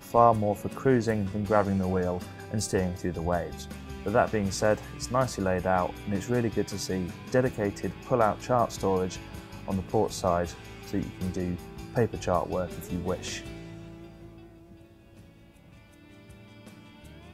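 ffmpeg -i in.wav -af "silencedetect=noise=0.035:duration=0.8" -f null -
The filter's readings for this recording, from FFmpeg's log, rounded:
silence_start: 13.39
silence_end: 17.33 | silence_duration: 3.94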